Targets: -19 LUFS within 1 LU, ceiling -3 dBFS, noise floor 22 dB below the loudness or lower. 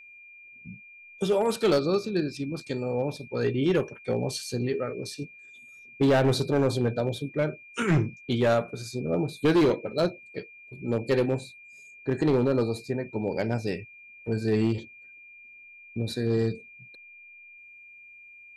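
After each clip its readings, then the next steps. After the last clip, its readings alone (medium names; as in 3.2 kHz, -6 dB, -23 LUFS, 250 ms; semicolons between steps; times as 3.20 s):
clipped samples 1.0%; clipping level -17.0 dBFS; steady tone 2.4 kHz; tone level -47 dBFS; loudness -27.0 LUFS; peak level -17.0 dBFS; loudness target -19.0 LUFS
-> clip repair -17 dBFS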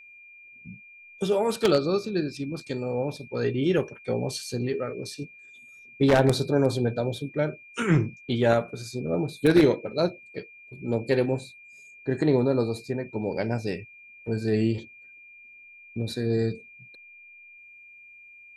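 clipped samples 0.0%; steady tone 2.4 kHz; tone level -47 dBFS
-> band-stop 2.4 kHz, Q 30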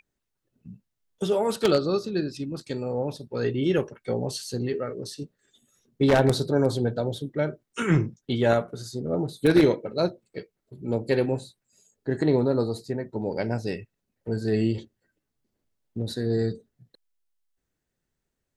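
steady tone not found; loudness -26.0 LUFS; peak level -8.0 dBFS; loudness target -19.0 LUFS
-> trim +7 dB; peak limiter -3 dBFS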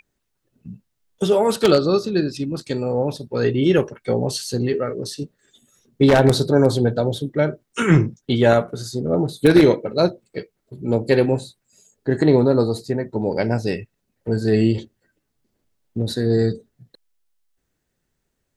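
loudness -19.5 LUFS; peak level -3.0 dBFS; noise floor -75 dBFS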